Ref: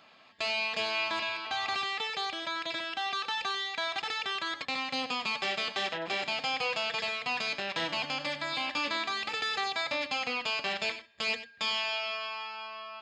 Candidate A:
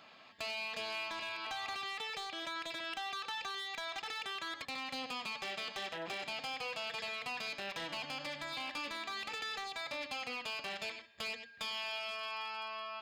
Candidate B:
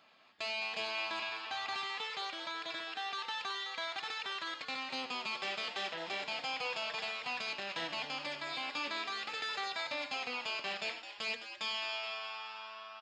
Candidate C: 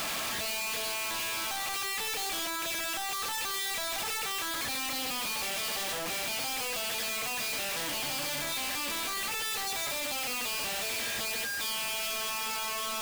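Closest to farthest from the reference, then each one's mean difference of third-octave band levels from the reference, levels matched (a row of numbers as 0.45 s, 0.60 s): B, A, C; 2.0 dB, 3.5 dB, 11.5 dB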